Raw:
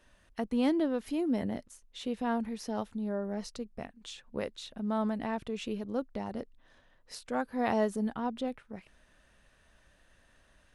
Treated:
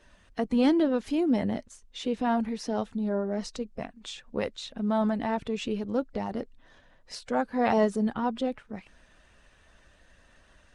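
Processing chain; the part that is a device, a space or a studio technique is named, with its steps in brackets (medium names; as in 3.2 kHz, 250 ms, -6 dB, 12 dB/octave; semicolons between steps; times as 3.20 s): clip after many re-uploads (low-pass 8.8 kHz 24 dB/octave; coarse spectral quantiser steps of 15 dB); trim +5.5 dB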